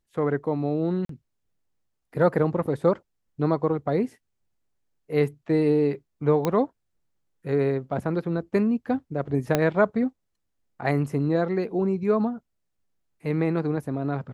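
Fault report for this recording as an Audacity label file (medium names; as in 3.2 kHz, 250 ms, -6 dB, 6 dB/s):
1.050000	1.090000	dropout 43 ms
6.450000	6.450000	pop -11 dBFS
9.550000	9.550000	pop -7 dBFS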